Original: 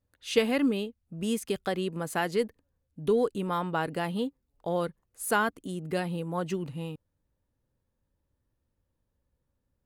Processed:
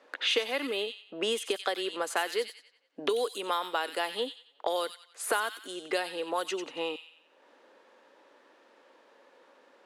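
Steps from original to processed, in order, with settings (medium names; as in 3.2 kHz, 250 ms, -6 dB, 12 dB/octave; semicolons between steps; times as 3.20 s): Bessel high-pass 550 Hz, order 6; on a send: feedback echo behind a high-pass 91 ms, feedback 33%, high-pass 2.6 kHz, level -6 dB; on the sum: dynamic bell 3.6 kHz, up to +6 dB, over -52 dBFS, Q 2.6; level-controlled noise filter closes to 2.9 kHz, open at -30 dBFS; three bands compressed up and down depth 100%; trim +1.5 dB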